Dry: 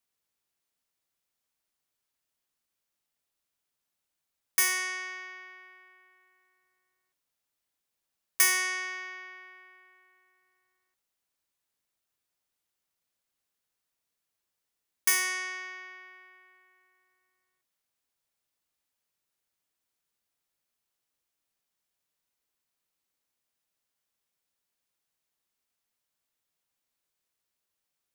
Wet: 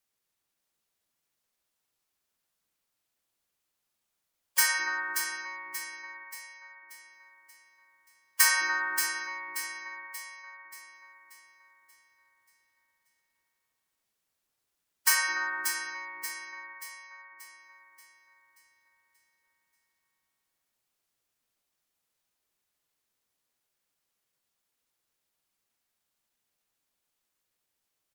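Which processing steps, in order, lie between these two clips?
spectral gate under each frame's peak -15 dB strong; echo with dull and thin repeats by turns 0.291 s, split 2000 Hz, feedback 68%, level -4 dB; harmoniser -12 st -14 dB, -3 st 0 dB; gain -1.5 dB

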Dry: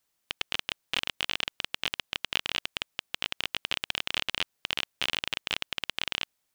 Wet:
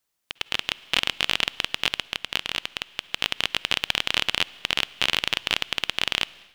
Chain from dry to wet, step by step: on a send at -20 dB: reverb RT60 2.5 s, pre-delay 46 ms; on the sum: AGC gain up to 11.5 dB; gain -1 dB

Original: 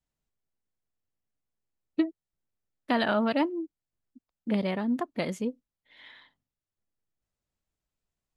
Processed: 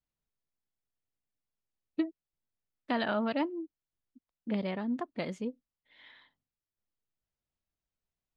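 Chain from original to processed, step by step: LPF 5800 Hz 12 dB/oct; gain -5 dB

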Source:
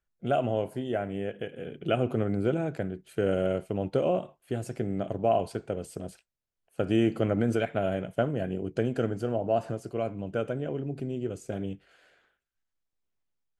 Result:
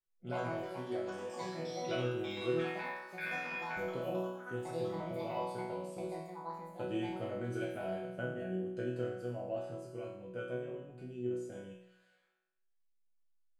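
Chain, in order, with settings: 2.59–3.77 ring modulator 2000 Hz; echoes that change speed 0.117 s, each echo +7 st, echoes 3, each echo -6 dB; resonator bank B2 sus4, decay 0.82 s; gain +8.5 dB

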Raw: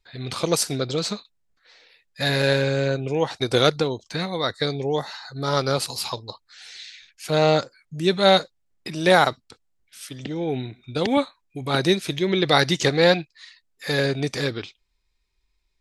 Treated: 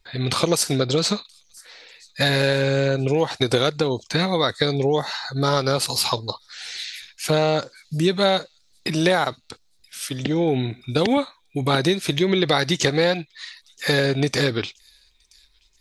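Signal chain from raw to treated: compressor 6:1, threshold -24 dBFS, peak gain reduction 13 dB; on a send: thin delay 0.977 s, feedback 41%, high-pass 5200 Hz, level -21.5 dB; on the sum: gain +8 dB

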